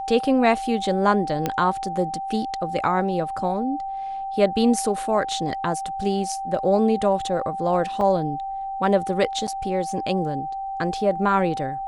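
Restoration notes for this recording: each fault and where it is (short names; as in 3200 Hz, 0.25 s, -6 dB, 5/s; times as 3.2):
tone 780 Hz -27 dBFS
1.46 pop -9 dBFS
8.01 gap 2.1 ms
9.47–9.48 gap 7.5 ms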